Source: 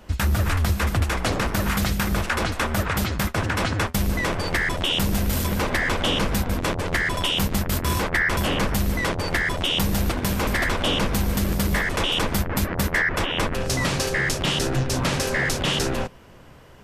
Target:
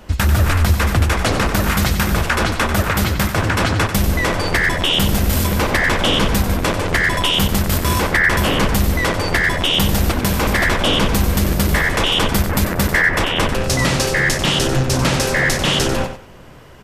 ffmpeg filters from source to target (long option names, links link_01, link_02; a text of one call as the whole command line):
ffmpeg -i in.wav -af "aecho=1:1:93|186|279:0.335|0.077|0.0177,volume=6dB" out.wav